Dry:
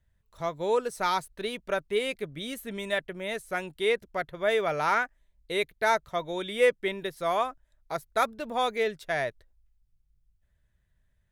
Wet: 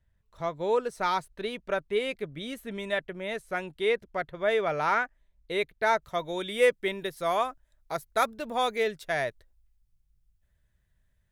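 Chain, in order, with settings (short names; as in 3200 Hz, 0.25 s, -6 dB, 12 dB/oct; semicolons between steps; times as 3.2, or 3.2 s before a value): high shelf 6100 Hz -10 dB, from 6.02 s +3 dB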